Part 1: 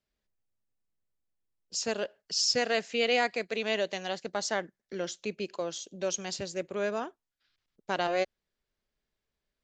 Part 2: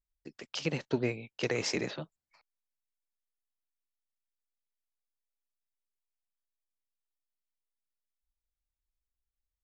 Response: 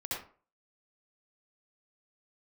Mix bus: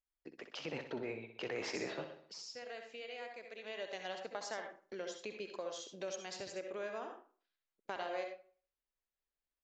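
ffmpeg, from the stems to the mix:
-filter_complex "[0:a]agate=range=-15dB:threshold=-49dB:ratio=16:detection=peak,acompressor=threshold=-42dB:ratio=3,volume=-2dB,afade=type=in:start_time=3.61:duration=0.28:silence=0.446684,asplit=3[link_01][link_02][link_03];[link_02]volume=-4.5dB[link_04];[link_03]volume=-24dB[link_05];[1:a]lowpass=frequency=2500:poles=1,alimiter=level_in=4.5dB:limit=-24dB:level=0:latency=1:release=15,volume=-4.5dB,volume=-0.5dB,asplit=2[link_06][link_07];[link_07]volume=-9.5dB[link_08];[2:a]atrim=start_sample=2205[link_09];[link_04][link_09]afir=irnorm=-1:irlink=0[link_10];[link_05][link_08]amix=inputs=2:normalize=0,aecho=0:1:62|124|186|248|310|372|434|496:1|0.54|0.292|0.157|0.085|0.0459|0.0248|0.0134[link_11];[link_01][link_06][link_10][link_11]amix=inputs=4:normalize=0,bass=frequency=250:gain=-12,treble=frequency=4000:gain=-5"

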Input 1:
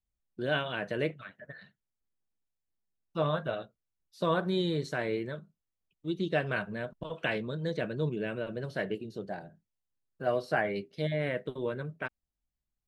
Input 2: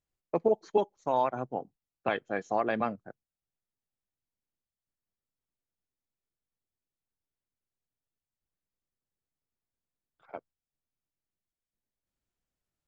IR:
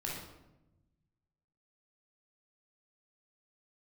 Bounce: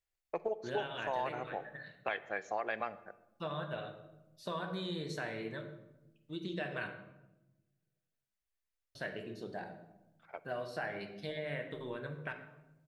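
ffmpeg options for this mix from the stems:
-filter_complex "[0:a]lowshelf=frequency=460:gain=-8,acompressor=threshold=-37dB:ratio=2.5,adelay=250,volume=-3.5dB,asplit=3[link_01][link_02][link_03];[link_01]atrim=end=6.93,asetpts=PTS-STARTPTS,afade=type=out:start_time=6.926:duration=0.004:curve=hsin[link_04];[link_02]atrim=start=6.93:end=8.95,asetpts=PTS-STARTPTS,volume=0[link_05];[link_03]atrim=start=8.95,asetpts=PTS-STARTPTS,afade=type=in:duration=0.004:curve=hsin[link_06];[link_04][link_05][link_06]concat=n=3:v=0:a=1,asplit=2[link_07][link_08];[link_08]volume=-4dB[link_09];[1:a]equalizer=frequency=125:width_type=o:width=1:gain=-11,equalizer=frequency=250:width_type=o:width=1:gain=-12,equalizer=frequency=1000:width_type=o:width=1:gain=-3,equalizer=frequency=2000:width_type=o:width=1:gain=5,volume=-2.5dB,asplit=2[link_10][link_11];[link_11]volume=-16.5dB[link_12];[2:a]atrim=start_sample=2205[link_13];[link_09][link_12]amix=inputs=2:normalize=0[link_14];[link_14][link_13]afir=irnorm=-1:irlink=0[link_15];[link_07][link_10][link_15]amix=inputs=3:normalize=0,acompressor=threshold=-33dB:ratio=2.5"

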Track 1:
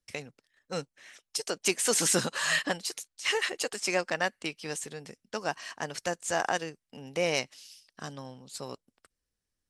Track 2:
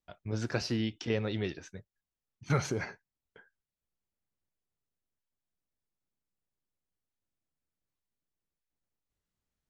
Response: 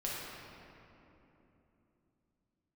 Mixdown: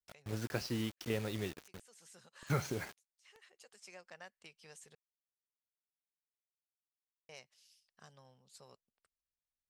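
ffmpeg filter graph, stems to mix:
-filter_complex "[0:a]acompressor=threshold=-36dB:ratio=2,equalizer=frequency=290:width=3.4:gain=-13,volume=-16.5dB,asplit=3[link_01][link_02][link_03];[link_01]atrim=end=4.95,asetpts=PTS-STARTPTS,afade=type=out:start_time=4.946:duration=0.004:curve=hsin[link_04];[link_02]atrim=start=4.95:end=7.29,asetpts=PTS-STARTPTS,volume=0[link_05];[link_03]atrim=start=7.29,asetpts=PTS-STARTPTS,afade=type=in:duration=0.004:curve=hsin[link_06];[link_04][link_05][link_06]concat=n=3:v=0:a=1[link_07];[1:a]acrusher=bits=6:mix=0:aa=0.000001,aeval=exprs='sgn(val(0))*max(abs(val(0))-0.00473,0)':channel_layout=same,volume=-4.5dB,asplit=2[link_08][link_09];[link_09]apad=whole_len=427535[link_10];[link_07][link_10]sidechaincompress=threshold=-53dB:ratio=12:attack=24:release=883[link_11];[link_11][link_08]amix=inputs=2:normalize=0"

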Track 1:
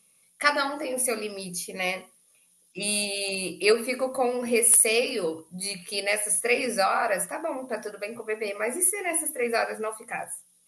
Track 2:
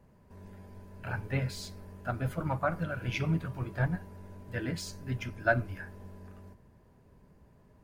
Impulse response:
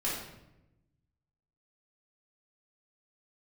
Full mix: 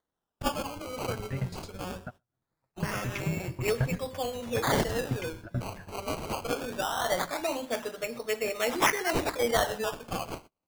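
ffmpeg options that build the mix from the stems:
-filter_complex "[0:a]acompressor=mode=upward:threshold=-39dB:ratio=2.5,acrusher=samples=17:mix=1:aa=0.000001:lfo=1:lforange=17:lforate=0.21,volume=-0.5dB,afade=type=in:start_time=6.93:duration=0.31:silence=0.421697,asplit=3[link_01][link_02][link_03];[link_02]volume=-22dB[link_04];[1:a]lowshelf=frequency=390:gain=7,aeval=exprs='val(0)*pow(10,-18*if(lt(mod(9.2*n/s,1),2*abs(9.2)/1000),1-mod(9.2*n/s,1)/(2*abs(9.2)/1000),(mod(9.2*n/s,1)-2*abs(9.2)/1000)/(1-2*abs(9.2)/1000))/20)':channel_layout=same,volume=-1dB,asplit=2[link_05][link_06];[link_06]volume=-22dB[link_07];[link_03]apad=whole_len=345432[link_08];[link_05][link_08]sidechaingate=range=-33dB:threshold=-51dB:ratio=16:detection=peak[link_09];[link_04][link_07]amix=inputs=2:normalize=0,aecho=0:1:123|246|369|492|615:1|0.32|0.102|0.0328|0.0105[link_10];[link_01][link_09][link_10]amix=inputs=3:normalize=0,agate=range=-29dB:threshold=-47dB:ratio=16:detection=peak"

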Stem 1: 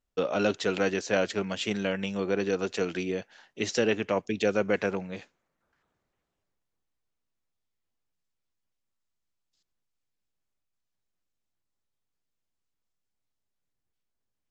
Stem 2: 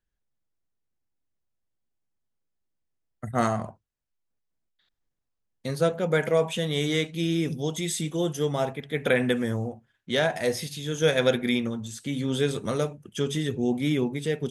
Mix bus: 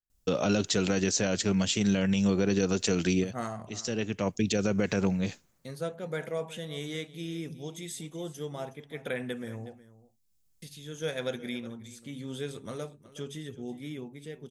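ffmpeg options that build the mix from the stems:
ffmpeg -i stem1.wav -i stem2.wav -filter_complex "[0:a]bass=frequency=250:gain=13,treble=frequency=4000:gain=13,adelay=100,volume=1dB[link_01];[1:a]dynaudnorm=framelen=220:gausssize=11:maxgain=3.5dB,volume=-14.5dB,asplit=3[link_02][link_03][link_04];[link_02]atrim=end=9.82,asetpts=PTS-STARTPTS,afade=type=out:start_time=9.816:duration=0.004:curve=hsin[link_05];[link_03]atrim=start=9.82:end=10.62,asetpts=PTS-STARTPTS,volume=0[link_06];[link_04]atrim=start=10.62,asetpts=PTS-STARTPTS,afade=type=in:duration=0.004:curve=hsin[link_07];[link_05][link_06][link_07]concat=n=3:v=0:a=1,asplit=3[link_08][link_09][link_10];[link_09]volume=-17.5dB[link_11];[link_10]apad=whole_len=644080[link_12];[link_01][link_12]sidechaincompress=threshold=-51dB:ratio=10:attack=43:release=796[link_13];[link_11]aecho=0:1:367:1[link_14];[link_13][link_08][link_14]amix=inputs=3:normalize=0,highshelf=frequency=8900:gain=4,alimiter=limit=-16.5dB:level=0:latency=1:release=89" out.wav

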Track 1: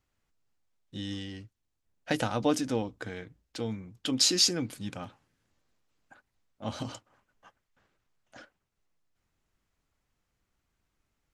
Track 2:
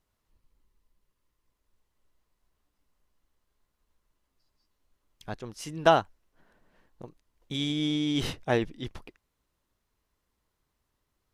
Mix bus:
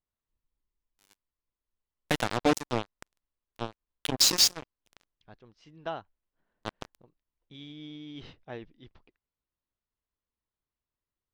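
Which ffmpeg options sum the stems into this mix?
ffmpeg -i stem1.wav -i stem2.wav -filter_complex "[0:a]adynamicequalizer=threshold=0.00447:dfrequency=140:dqfactor=1:tfrequency=140:tqfactor=1:attack=5:release=100:ratio=0.375:range=2.5:mode=cutabove:tftype=bell,acrusher=bits=3:mix=0:aa=0.5,volume=2dB[link_01];[1:a]lowpass=frequency=4700:width=0.5412,lowpass=frequency=4700:width=1.3066,volume=-15.5dB[link_02];[link_01][link_02]amix=inputs=2:normalize=0" out.wav

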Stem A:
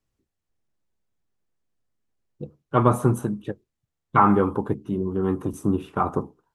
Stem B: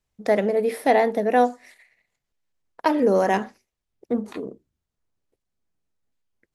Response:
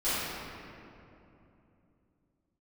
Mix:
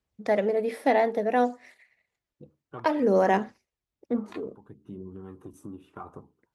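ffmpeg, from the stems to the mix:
-filter_complex "[0:a]acompressor=threshold=-31dB:ratio=2.5,volume=-11dB[link_01];[1:a]highshelf=frequency=8500:gain=-11,volume=-4dB,asplit=2[link_02][link_03];[link_03]apad=whole_len=288684[link_04];[link_01][link_04]sidechaincompress=threshold=-41dB:ratio=10:attack=7.4:release=567[link_05];[link_05][link_02]amix=inputs=2:normalize=0,aphaser=in_gain=1:out_gain=1:delay=3.6:decay=0.3:speed=0.61:type=sinusoidal,highpass=45"

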